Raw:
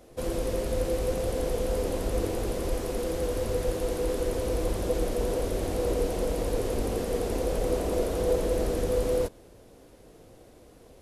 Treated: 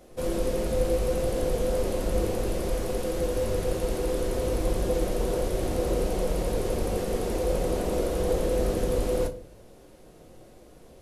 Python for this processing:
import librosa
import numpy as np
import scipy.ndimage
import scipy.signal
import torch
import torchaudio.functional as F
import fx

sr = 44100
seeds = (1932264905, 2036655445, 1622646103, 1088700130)

y = fx.room_shoebox(x, sr, seeds[0], volume_m3=260.0, walls='furnished', distance_m=0.96)